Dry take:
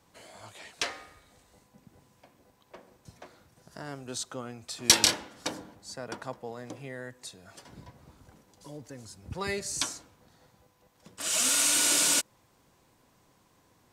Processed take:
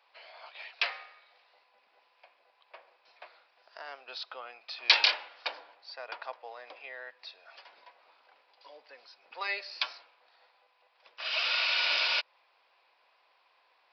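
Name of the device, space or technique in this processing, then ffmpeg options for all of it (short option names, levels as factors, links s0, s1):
musical greeting card: -af "aresample=11025,aresample=44100,highpass=f=610:w=0.5412,highpass=f=610:w=1.3066,equalizer=f=2500:t=o:w=0.33:g=8"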